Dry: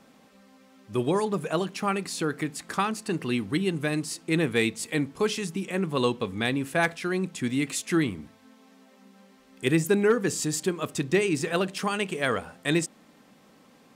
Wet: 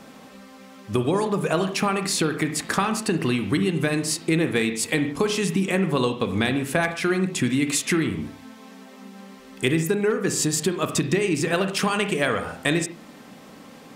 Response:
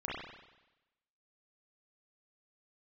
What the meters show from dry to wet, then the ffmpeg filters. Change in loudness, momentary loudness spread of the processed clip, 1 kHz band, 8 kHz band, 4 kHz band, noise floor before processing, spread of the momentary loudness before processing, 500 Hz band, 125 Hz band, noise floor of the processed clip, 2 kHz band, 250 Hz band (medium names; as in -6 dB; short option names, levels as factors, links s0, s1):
+4.0 dB, 4 LU, +3.5 dB, +6.5 dB, +5.0 dB, -57 dBFS, 6 LU, +3.0 dB, +5.0 dB, -46 dBFS, +4.0 dB, +4.0 dB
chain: -filter_complex "[0:a]acompressor=threshold=0.0316:ratio=10,asplit=2[s0][s1];[1:a]atrim=start_sample=2205,afade=t=out:st=0.21:d=0.01,atrim=end_sample=9702[s2];[s1][s2]afir=irnorm=-1:irlink=0,volume=0.376[s3];[s0][s3]amix=inputs=2:normalize=0,volume=2.82"